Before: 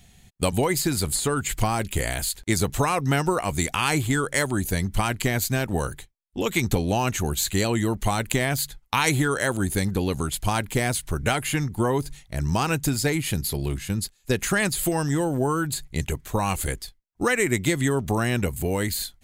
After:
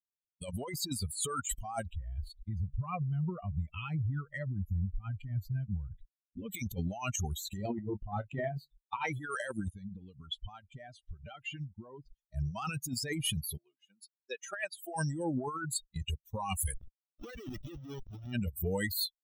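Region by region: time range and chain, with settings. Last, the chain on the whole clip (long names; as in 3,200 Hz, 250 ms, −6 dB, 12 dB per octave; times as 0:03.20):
0:01.86–0:06.50: bass and treble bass +12 dB, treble −11 dB + downward compressor, threshold −24 dBFS + saturating transformer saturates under 70 Hz
0:07.57–0:09.13: low-pass filter 1,300 Hz 6 dB per octave + double-tracking delay 29 ms −5.5 dB
0:09.70–0:12.19: downward compressor 10 to 1, threshold −25 dBFS + high-frequency loss of the air 86 metres
0:13.57–0:14.96: high-pass filter 700 Hz + spectral tilt −3 dB per octave
0:16.74–0:18.33: leveller curve on the samples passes 2 + comparator with hysteresis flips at −18 dBFS
whole clip: spectral dynamics exaggerated over time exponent 3; high-shelf EQ 12,000 Hz +3.5 dB; compressor whose output falls as the input rises −40 dBFS, ratio −1; level +3.5 dB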